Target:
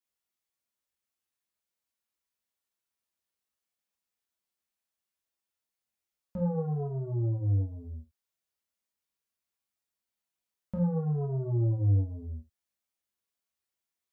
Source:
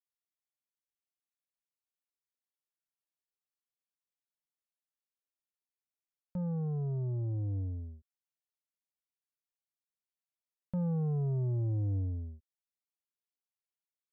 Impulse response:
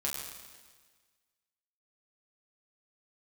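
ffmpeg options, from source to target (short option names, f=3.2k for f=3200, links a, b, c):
-filter_complex "[0:a]asplit=3[a][b][c];[a]afade=t=out:st=6.36:d=0.02[d];[b]equalizer=f=630:t=o:w=1:g=7.5,afade=t=in:st=6.36:d=0.02,afade=t=out:st=6.82:d=0.02[e];[c]afade=t=in:st=6.82:d=0.02[f];[d][e][f]amix=inputs=3:normalize=0[g];[1:a]atrim=start_sample=2205,atrim=end_sample=4410[h];[g][h]afir=irnorm=-1:irlink=0,volume=3dB"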